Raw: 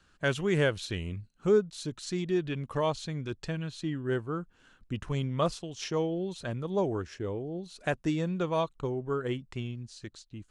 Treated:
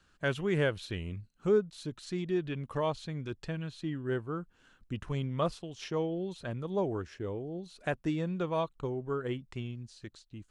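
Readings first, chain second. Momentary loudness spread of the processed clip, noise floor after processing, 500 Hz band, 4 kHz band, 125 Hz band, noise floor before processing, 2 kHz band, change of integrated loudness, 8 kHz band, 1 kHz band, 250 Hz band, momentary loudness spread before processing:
13 LU, −68 dBFS, −2.5 dB, −4.5 dB, −2.5 dB, −66 dBFS, −3.0 dB, −2.5 dB, −8.5 dB, −2.5 dB, −2.5 dB, 12 LU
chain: dynamic equaliser 6,700 Hz, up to −7 dB, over −56 dBFS, Q 1
level −2.5 dB

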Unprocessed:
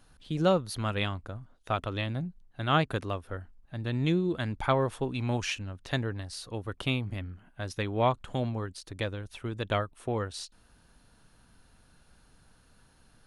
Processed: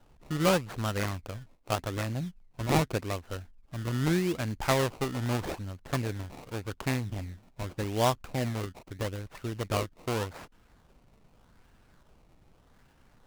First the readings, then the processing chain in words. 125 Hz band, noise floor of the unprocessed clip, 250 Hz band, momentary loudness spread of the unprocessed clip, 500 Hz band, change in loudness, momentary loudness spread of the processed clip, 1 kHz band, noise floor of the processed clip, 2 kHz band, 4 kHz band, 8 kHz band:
0.0 dB, −62 dBFS, 0.0 dB, 13 LU, −0.5 dB, 0.0 dB, 13 LU, −1.0 dB, −62 dBFS, −0.5 dB, −1.0 dB, +5.5 dB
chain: dynamic equaliser 6,100 Hz, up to −7 dB, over −53 dBFS, Q 0.97
sample-and-hold swept by an LFO 19×, swing 100% 0.83 Hz
short delay modulated by noise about 1,800 Hz, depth 0.037 ms

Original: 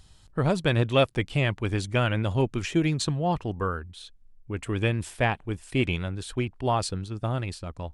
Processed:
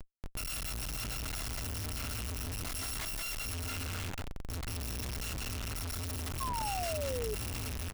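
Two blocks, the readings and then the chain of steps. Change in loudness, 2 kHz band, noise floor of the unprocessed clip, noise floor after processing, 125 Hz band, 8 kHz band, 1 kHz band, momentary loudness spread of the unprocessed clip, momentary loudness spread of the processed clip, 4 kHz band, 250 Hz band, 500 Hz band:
−9.5 dB, −11.0 dB, −55 dBFS, −43 dBFS, −13.0 dB, +2.0 dB, −9.5 dB, 11 LU, 4 LU, −5.5 dB, −17.0 dB, −14.5 dB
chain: samples in bit-reversed order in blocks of 256 samples
parametric band 160 Hz −2 dB 1.2 octaves
hum removal 68.9 Hz, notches 21
harmonic and percussive parts rebalanced percussive −4 dB
downward compressor 12 to 1, threshold −27 dBFS, peak gain reduction 10.5 dB
bass and treble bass +7 dB, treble −9 dB
bouncing-ball delay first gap 170 ms, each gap 0.8×, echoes 5
comparator with hysteresis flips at −46.5 dBFS
sound drawn into the spectrogram fall, 0:06.40–0:07.35, 410–1,100 Hz −34 dBFS
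level −3 dB

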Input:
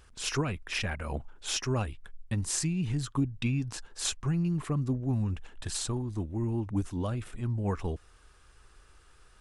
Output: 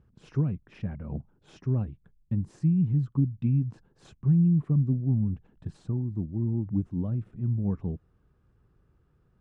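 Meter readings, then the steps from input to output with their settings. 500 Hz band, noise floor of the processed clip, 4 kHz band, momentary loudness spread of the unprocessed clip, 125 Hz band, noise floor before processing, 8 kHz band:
−4.5 dB, −67 dBFS, below −20 dB, 7 LU, +5.5 dB, −59 dBFS, below −30 dB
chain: resonant band-pass 160 Hz, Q 1.9
level +8 dB

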